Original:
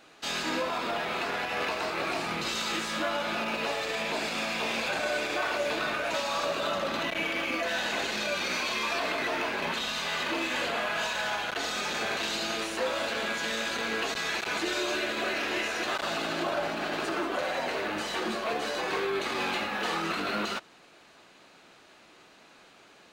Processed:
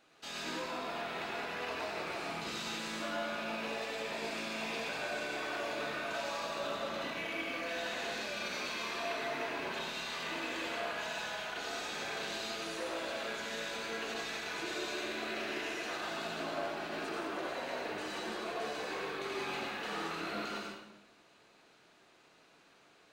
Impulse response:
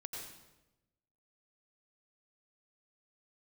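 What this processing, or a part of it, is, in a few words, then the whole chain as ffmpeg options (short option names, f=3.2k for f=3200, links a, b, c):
bathroom: -filter_complex "[1:a]atrim=start_sample=2205[a];[0:a][a]afir=irnorm=-1:irlink=0,volume=-6dB"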